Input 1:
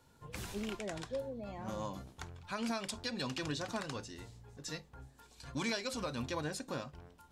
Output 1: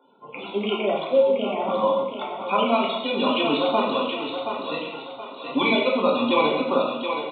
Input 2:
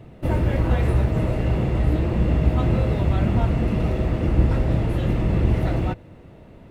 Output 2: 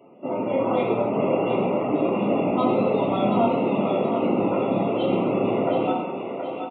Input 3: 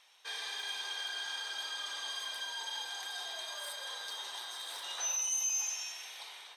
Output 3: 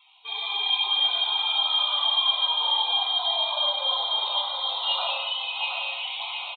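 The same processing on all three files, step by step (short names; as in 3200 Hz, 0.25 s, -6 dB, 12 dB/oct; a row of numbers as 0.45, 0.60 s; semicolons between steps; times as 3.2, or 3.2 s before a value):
reverb removal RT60 0.89 s; HPF 240 Hz 24 dB/oct; bell 340 Hz -6 dB 0.23 oct; AGC gain up to 7 dB; loudest bins only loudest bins 64; on a send: thinning echo 0.724 s, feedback 43%, high-pass 320 Hz, level -6 dB; on the sum: non-linear reverb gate 0.31 s falling, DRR -2.5 dB; downsampling 8000 Hz; Butterworth band-stop 1700 Hz, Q 1.7; match loudness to -23 LUFS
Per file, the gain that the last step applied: +10.0, -1.5, +8.5 dB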